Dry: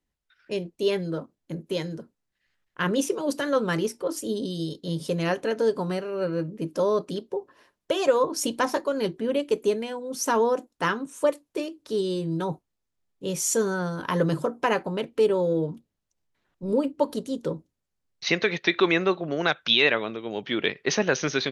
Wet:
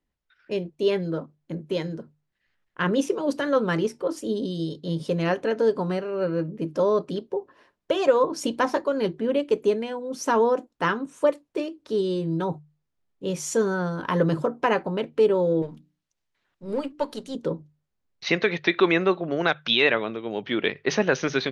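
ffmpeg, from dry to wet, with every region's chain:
-filter_complex "[0:a]asettb=1/sr,asplit=3[a][b][c];[a]atrim=end=15.624[d];[b]atrim=start=15.62:end=17.35,asetpts=PTS-STARTPTS,afade=t=in:d=0.004:c=qsin,afade=t=out:st=1.726:d=0.004:c=qsin,aeval=exprs='if(lt(val(0),0),0.708*val(0),val(0))':c=same,tiltshelf=f=1.3k:g=-6,bandreject=f=60:t=h:w=6,bandreject=f=120:t=h:w=6,bandreject=f=180:t=h:w=6,bandreject=f=240:t=h:w=6,bandreject=f=300:t=h:w=6,bandreject=f=360:t=h:w=6[e];[c]atrim=start=17.346[f];[d][e]acrossfade=d=0.004:c1=hsin:c2=qsin[g];[g][f]acrossfade=d=0.004:c1=qsin:c2=hsin,aemphasis=mode=reproduction:type=50fm,bandreject=f=50:t=h:w=6,bandreject=f=100:t=h:w=6,bandreject=f=150:t=h:w=6,volume=1.5dB"

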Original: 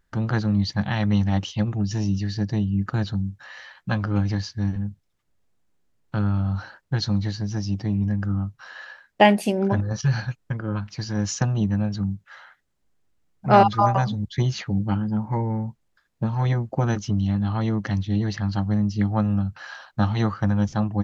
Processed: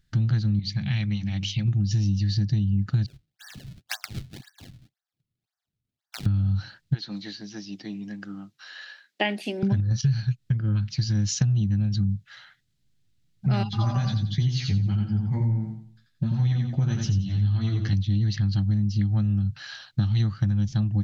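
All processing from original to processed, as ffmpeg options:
-filter_complex "[0:a]asettb=1/sr,asplit=3[a][b][c];[a]atrim=end=0.594[d];[b]atrim=start=0.59:end=1.68,asetpts=PTS-STARTPTS,afade=t=in:d=0.004:c=qsin,afade=t=out:st=1.086:d=0.004:c=qsin,equalizer=f=2.3k:t=o:w=0.28:g=12.5,acompressor=threshold=-29dB:ratio=2.5:attack=3.2:release=140:knee=1:detection=peak,bandreject=f=50:t=h:w=6,bandreject=f=100:t=h:w=6,bandreject=f=150:t=h:w=6,bandreject=f=200:t=h:w=6,bandreject=f=250:t=h:w=6,bandreject=f=300:t=h:w=6,bandreject=f=350:t=h:w=6,bandreject=f=400:t=h:w=6,bandreject=f=450:t=h:w=6,bandreject=f=500:t=h:w=6[e];[c]atrim=start=1.676[f];[d][e]acrossfade=d=0.004:c1=hsin:c2=qsin[g];[g][f]acrossfade=d=0.004:c1=qsin:c2=hsin,asettb=1/sr,asplit=3[h][i][j];[h]atrim=end=3.064[k];[i]atrim=start=3.06:end=6.26,asetpts=PTS-STARTPTS,afade=t=in:d=0.004:c=qsin,afade=t=out:st=3.196:d=0.004:c=qsin,asuperpass=centerf=1100:order=12:qfactor=1,acrusher=samples=31:mix=1:aa=0.000001:lfo=1:lforange=49.6:lforate=1.9[l];[j]atrim=start=6.256[m];[k][l]acrossfade=d=0.004:c1=hsin:c2=qsin[n];[n][m]acrossfade=d=0.004:c1=qsin:c2=hsin,asettb=1/sr,asplit=3[o][p][q];[o]atrim=end=6.944[r];[p]atrim=start=6.94:end=9.63,asetpts=PTS-STARTPTS,afade=t=in:d=0.004:c=qsin,afade=t=out:st=2.686:d=0.004:c=qsin,acrossover=split=3100[s][t];[t]acompressor=threshold=-50dB:ratio=4:attack=1:release=60[u];[s][u]amix=inputs=2:normalize=0,highpass=f=290:w=0.5412,highpass=f=290:w=1.3066[v];[q]atrim=start=9.626[w];[r][v]acrossfade=d=0.004:c1=hsin:c2=qsin[x];[x][w]acrossfade=d=0.004:c1=qsin:c2=hsin,asettb=1/sr,asplit=3[y][z][aa];[y]atrim=end=13.644[ab];[z]atrim=start=13.64:end=17.93,asetpts=PTS-STARTPTS,afade=t=in:d=0.004:c=qsin,afade=t=out:st=4.286:d=0.004:c=qsin,flanger=delay=4.5:depth=8.4:regen=37:speed=1.5:shape=sinusoidal,asplit=2[ac][ad];[ad]adelay=12,volume=-6.5dB[ae];[ac][ae]amix=inputs=2:normalize=0,atrim=end_sample=189189,aecho=1:1:88|176|264|352:0.562|0.186|0.0612|0.0202,atrim=end_sample=189189[af];[aa]atrim=start=17.926[ag];[ab][af]acrossfade=d=0.004:c1=hsin:c2=qsin[ah];[ah][ag]acrossfade=d=0.004:c1=qsin:c2=hsin,equalizer=f=125:t=o:w=1:g=12,equalizer=f=500:t=o:w=1:g=-9,equalizer=f=1k:t=o:w=1:g=-11,equalizer=f=4k:t=o:w=1:g=8,acompressor=threshold=-20dB:ratio=6"

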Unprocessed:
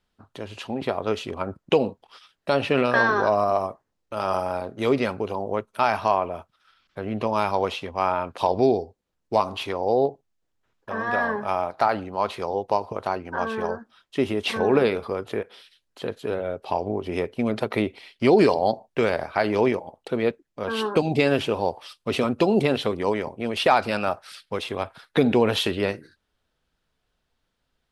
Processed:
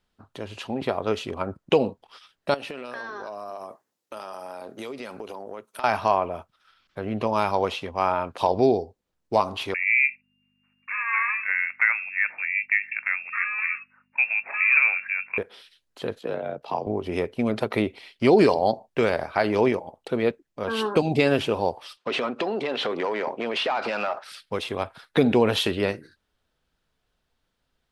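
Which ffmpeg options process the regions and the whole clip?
-filter_complex "[0:a]asettb=1/sr,asplit=3[a][b][c];[a]atrim=end=2.544[d];[b]atrim=start=2.54:end=5.84,asetpts=PTS-STARTPTS,afade=t=in:d=0.004:c=qsin,afade=t=out:st=3.296:d=0.004:c=qsin,highpass=210,aemphasis=mode=production:type=cd,acompressor=threshold=-32dB:ratio=8:attack=3.2:release=140:knee=1:detection=peak[e];[c]atrim=start=5.836[f];[d][e]acrossfade=d=0.004:c1=hsin:c2=qsin[g];[g][f]acrossfade=d=0.004:c1=qsin:c2=hsin,asettb=1/sr,asplit=3[h][i][j];[h]atrim=end=9.744[k];[i]atrim=start=9.74:end=15.38,asetpts=PTS-STARTPTS,afade=t=in:d=0.004:c=qsin,afade=t=out:st=5.636:d=0.004:c=qsin,lowpass=f=2.4k:t=q:w=0.5098,lowpass=f=2.4k:t=q:w=0.6013,lowpass=f=2.4k:t=q:w=0.9,lowpass=f=2.4k:t=q:w=2.563,afreqshift=-2800,aeval=exprs='val(0)+0.0141*(sin(2*PI*50*n/s)+sin(2*PI*2*50*n/s)/2+sin(2*PI*3*50*n/s)/3+sin(2*PI*4*50*n/s)/4+sin(2*PI*5*50*n/s)/5)':c=same,highpass=900[l];[j]atrim=start=15.376[m];[k][l]acrossfade=d=0.004:c1=hsin:c2=qsin[n];[n][m]acrossfade=d=0.004:c1=qsin:c2=hsin,asettb=1/sr,asplit=3[o][p][q];[o]atrim=end=16.194[r];[p]atrim=start=16.19:end=16.87,asetpts=PTS-STARTPTS,afade=t=in:d=0.004:c=qsin,afade=t=out:st=0.676:d=0.004:c=qsin,afreqshift=51,equalizer=f=9.8k:w=1.6:g=-7.5,tremolo=f=59:d=0.571[s];[q]atrim=start=16.866[t];[r][s]acrossfade=d=0.004:c1=hsin:c2=qsin[u];[u][t]acrossfade=d=0.004:c1=qsin:c2=hsin,asettb=1/sr,asplit=3[v][w][x];[v]atrim=end=21.974[y];[w]atrim=start=21.97:end=24.24,asetpts=PTS-STARTPTS,afade=t=in:d=0.004:c=qsin,afade=t=out:st=2.266:d=0.004:c=qsin,acompressor=threshold=-27dB:ratio=16:attack=3.2:release=140:knee=1:detection=peak,asplit=2[z][aa];[aa]highpass=f=720:p=1,volume=19dB,asoftclip=type=tanh:threshold=-14dB[ab];[z][ab]amix=inputs=2:normalize=0,lowpass=f=2.8k:p=1,volume=-6dB,highpass=200,lowpass=6.1k[ac];[x]atrim=start=24.236[ad];[y][ac]acrossfade=d=0.004:c1=hsin:c2=qsin[ae];[ae][ad]acrossfade=d=0.004:c1=qsin:c2=hsin"

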